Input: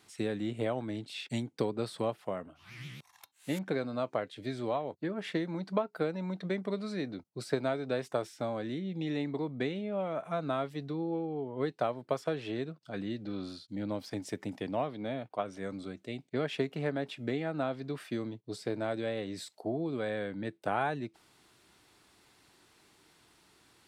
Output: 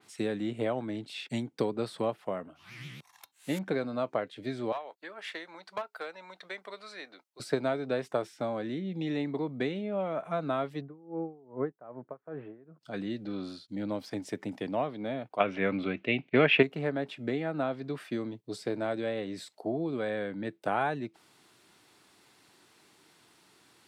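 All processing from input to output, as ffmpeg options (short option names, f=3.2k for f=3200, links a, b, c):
-filter_complex "[0:a]asettb=1/sr,asplit=3[a][b][c];[a]atrim=end=4.724[d];[b]atrim=start=4.72:end=7.4,asetpts=PTS-STARTPTS,afade=t=in:d=0.004:c=qsin,afade=t=out:st=2.676:d=0.004:c=qsin,highpass=890,aeval=exprs='clip(val(0),-1,0.0251)':c=same[e];[c]atrim=start=7.396[f];[d][e]acrossfade=d=0.004:c1=hsin:c2=qsin[g];[g][f]acrossfade=d=0.004:c1=qsin:c2=hsin,asettb=1/sr,asplit=3[h][i][j];[h]atrim=end=10.814[k];[i]atrim=start=10.81:end=12.81,asetpts=PTS-STARTPTS,afade=t=in:d=0.004:c=qsin,afade=t=out:st=1.996:d=0.004:c=qsin,lowpass=f=1.6k:w=0.5412,lowpass=f=1.6k:w=1.3066,aeval=exprs='val(0)*pow(10,-23*(0.5-0.5*cos(2*PI*2.5*n/s))/20)':c=same[l];[j]atrim=start=12.806[m];[k][l]acrossfade=d=0.004:c1=hsin:c2=qsin[n];[n][m]acrossfade=d=0.004:c1=qsin:c2=hsin,asettb=1/sr,asplit=3[o][p][q];[o]atrim=end=15.404[r];[p]atrim=start=15.4:end=16.63,asetpts=PTS-STARTPTS,afade=t=in:d=0.004:c=qsin,afade=t=out:st=1.226:d=0.004:c=qsin,lowpass=f=2.6k:t=q:w=4,acontrast=87[s];[q]atrim=start=16.626[t];[r][s]acrossfade=d=0.004:c1=hsin:c2=qsin[u];[u][t]acrossfade=d=0.004:c1=qsin:c2=hsin,highpass=120,adynamicequalizer=threshold=0.00178:dfrequency=3600:dqfactor=0.7:tfrequency=3600:tqfactor=0.7:attack=5:release=100:ratio=0.375:range=3:mode=cutabove:tftype=highshelf,volume=2dB"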